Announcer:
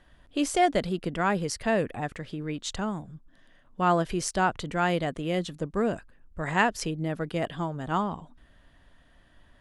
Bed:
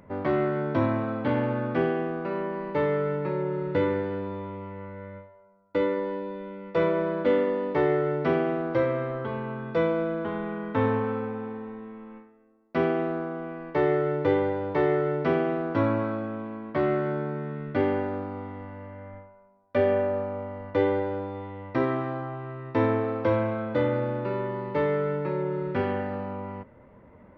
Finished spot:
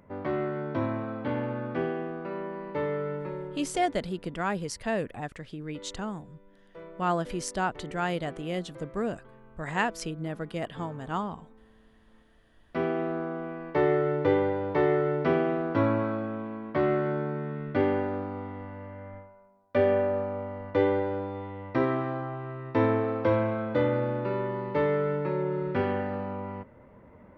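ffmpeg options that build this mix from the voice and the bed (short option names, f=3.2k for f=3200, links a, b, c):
-filter_complex "[0:a]adelay=3200,volume=-4dB[a];[1:a]volume=16.5dB,afade=t=out:st=3.16:d=0.64:silence=0.141254,afade=t=in:st=12.07:d=1.23:silence=0.0841395[b];[a][b]amix=inputs=2:normalize=0"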